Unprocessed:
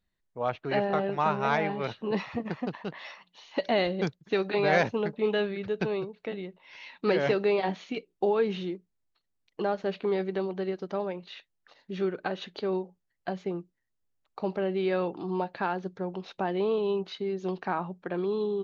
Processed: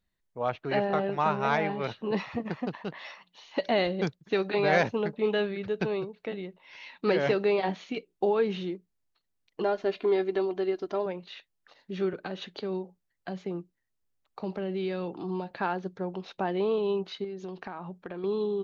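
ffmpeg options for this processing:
-filter_complex "[0:a]asettb=1/sr,asplit=3[s0][s1][s2];[s0]atrim=end=9.634[s3];[s1]atrim=start=9.63:end=11.06,asetpts=PTS-STARTPTS,afade=t=in:d=0.004:c=qsin,afade=t=out:st=1.426:d=0.004:c=qsin,aecho=1:1:2.9:0.65,atrim=end_sample=63063[s4];[s2]atrim=start=11.056[s5];[s3][s4]acrossfade=d=0.004:c1=hsin:c2=qsin[s6];[s6][s5]acrossfade=d=0.004:c1=qsin:c2=hsin,asettb=1/sr,asplit=3[s7][s8][s9];[s7]atrim=end=12.134[s10];[s8]atrim=start=12.13:end=15.51,asetpts=PTS-STARTPTS,afade=t=in:d=0.004:c=qsin,afade=t=out:st=3.376:d=0.004:c=qsin,acrossover=split=300|3000[s11][s12][s13];[s12]acompressor=threshold=0.02:ratio=6:attack=3.2:release=140:knee=2.83:detection=peak[s14];[s11][s14][s13]amix=inputs=3:normalize=0[s15];[s9]atrim=start=15.506[s16];[s10][s15]acrossfade=d=0.004:c1=hsin:c2=qsin[s17];[s17][s16]acrossfade=d=0.004:c1=qsin:c2=hsin,asettb=1/sr,asplit=3[s18][s19][s20];[s18]atrim=end=17.244[s21];[s19]atrim=start=17.24:end=18.24,asetpts=PTS-STARTPTS,afade=t=in:d=0.004:c=qsin,afade=t=out:st=0.996:d=0.004:c=qsin,acompressor=threshold=0.02:ratio=6:attack=3.2:release=140:knee=1:detection=peak[s22];[s20]atrim=start=18.236[s23];[s21][s22]acrossfade=d=0.004:c1=hsin:c2=qsin[s24];[s24][s23]acrossfade=d=0.004:c1=qsin:c2=hsin"

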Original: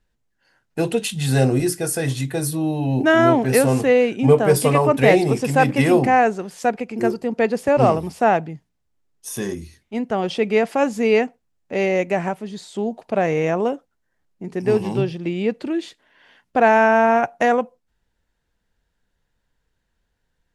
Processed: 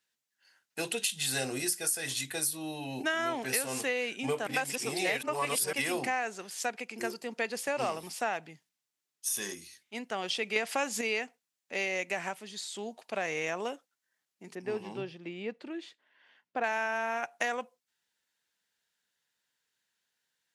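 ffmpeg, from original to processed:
-filter_complex "[0:a]asettb=1/sr,asplit=3[s0][s1][s2];[s0]atrim=end=14.554[s3];[s1]atrim=start=14.55:end=16.64,asetpts=PTS-STARTPTS,afade=t=in:d=0.004:c=qsin,afade=t=out:st=2.086:d=0.004:c=qsin,lowpass=f=1000:p=1[s4];[s2]atrim=start=16.636[s5];[s3][s4]acrossfade=d=0.004:c1=hsin:c2=qsin[s6];[s6][s5]acrossfade=d=0.004:c1=qsin:c2=hsin,asplit=5[s7][s8][s9][s10][s11];[s7]atrim=end=4.472[s12];[s8]atrim=start=4.468:end=5.732,asetpts=PTS-STARTPTS,areverse[s13];[s9]atrim=start=5.728:end=10.562[s14];[s10]atrim=start=10.558:end=11.012,asetpts=PTS-STARTPTS,volume=2.51[s15];[s11]atrim=start=11.008[s16];[s12][s13]acrossfade=d=0.004:c1=hsin:c2=hsin[s17];[s17][s14]acrossfade=d=0.004:c1=hsin:c2=hsin[s18];[s18][s15]acrossfade=d=0.004:c1=hsin:c2=hsin[s19];[s19][s16]acrossfade=d=0.004:c1=hsin:c2=hsin,highpass=180,tiltshelf=f=1200:g=-10,acompressor=threshold=0.1:ratio=5,volume=0.422"

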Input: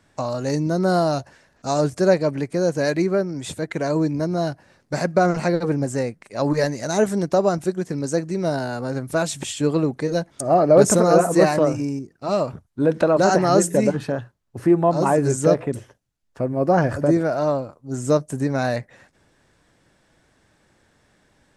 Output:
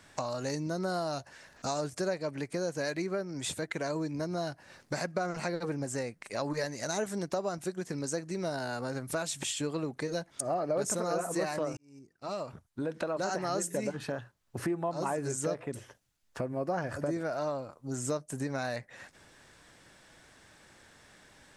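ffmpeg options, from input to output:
-filter_complex "[0:a]asplit=2[s0][s1];[s0]atrim=end=11.77,asetpts=PTS-STARTPTS,afade=t=out:st=11.766:d=0.004:c=hsin[s2];[s1]atrim=start=11.77,asetpts=PTS-STARTPTS,afade=t=in:d=2.01[s3];[s2][s3]concat=n=2:v=0:a=1,tiltshelf=f=760:g=-4,acompressor=threshold=0.0126:ratio=3,volume=1.33"

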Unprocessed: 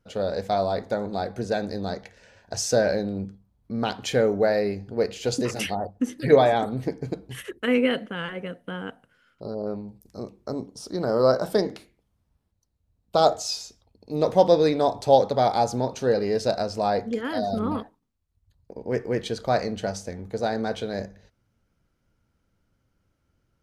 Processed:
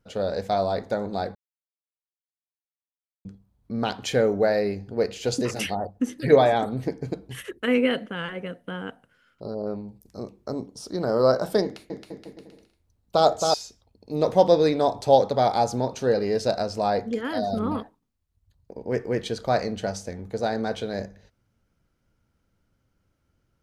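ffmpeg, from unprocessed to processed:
-filter_complex "[0:a]asettb=1/sr,asplit=3[s0][s1][s2];[s0]atrim=end=11.634[s3];[s1]atrim=start=11.63:end=13.54,asetpts=PTS-STARTPTS,afade=t=in:d=0.004:c=qsin,afade=t=out:st=1.906:d=0.004:c=qsin,aecho=1:1:270|472.5|624.4|738.3|823.7|887.8|935.8|971.9:0.631|0.398|0.251|0.158|0.1|0.0631|0.0398|0.0251,atrim=end_sample=84231[s4];[s2]atrim=start=13.536[s5];[s3][s4]acrossfade=d=0.004:c1=hsin:c2=qsin[s6];[s6][s5]acrossfade=d=0.004:c1=qsin:c2=hsin,asplit=3[s7][s8][s9];[s7]atrim=end=1.35,asetpts=PTS-STARTPTS,afade=t=out:st=1.346:d=0.004:c=hsin[s10];[s8]atrim=start=1.35:end=3.25,asetpts=PTS-STARTPTS,volume=0[s11];[s9]atrim=start=3.25,asetpts=PTS-STARTPTS,afade=t=in:d=0.004:c=hsin[s12];[s10][s11][s12]concat=n=3:v=0:a=1"

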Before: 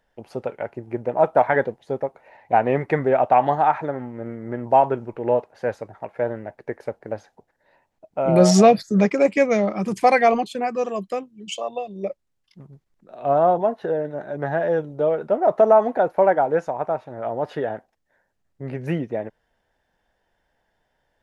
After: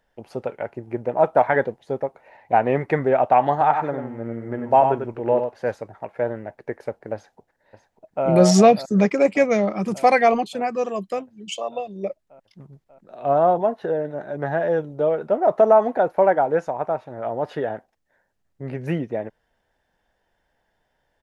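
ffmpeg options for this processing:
-filter_complex "[0:a]asettb=1/sr,asplit=3[s0][s1][s2];[s0]atrim=end=3.514[s3];[s1]atrim=start=3.51:end=5.73,asetpts=PTS-STARTPTS,afade=t=in:d=0.004:c=qsin,afade=t=out:st=2.216:d=0.004:c=qsin,aecho=1:1:95:0.473,atrim=end_sample=97902[s4];[s2]atrim=start=5.726[s5];[s3][s4]acrossfade=d=0.004:c1=hsin:c2=qsin[s6];[s6][s5]acrossfade=d=0.004:c1=qsin:c2=hsin,asplit=2[s7][s8];[s8]afade=t=in:st=7.14:d=0.01,afade=t=out:st=8.26:d=0.01,aecho=0:1:590|1180|1770|2360|2950|3540|4130|4720|5310|5900|6490|7080:0.266073|0.199554|0.149666|0.112249|0.084187|0.0631403|0.0473552|0.0355164|0.0266373|0.019978|0.0149835|0.0112376[s9];[s7][s9]amix=inputs=2:normalize=0"

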